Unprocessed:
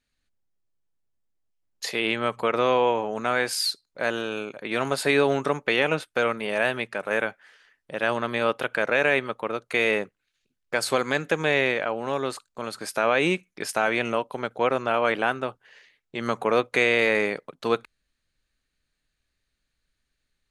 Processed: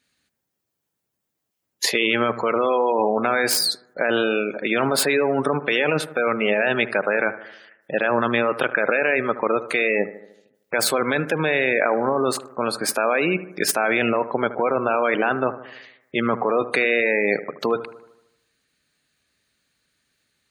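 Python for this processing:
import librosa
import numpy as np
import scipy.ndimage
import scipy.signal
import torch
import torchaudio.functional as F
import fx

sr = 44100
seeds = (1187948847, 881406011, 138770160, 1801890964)

p1 = fx.tracing_dist(x, sr, depth_ms=0.038)
p2 = scipy.signal.sosfilt(scipy.signal.butter(2, 130.0, 'highpass', fs=sr, output='sos'), p1)
p3 = fx.high_shelf(p2, sr, hz=11000.0, db=8.5)
p4 = fx.over_compress(p3, sr, threshold_db=-28.0, ratio=-0.5)
p5 = p3 + (p4 * 10.0 ** (1.5 / 20.0))
p6 = fx.spec_gate(p5, sr, threshold_db=-20, keep='strong')
y = fx.echo_bbd(p6, sr, ms=76, stages=1024, feedback_pct=55, wet_db=-14.5)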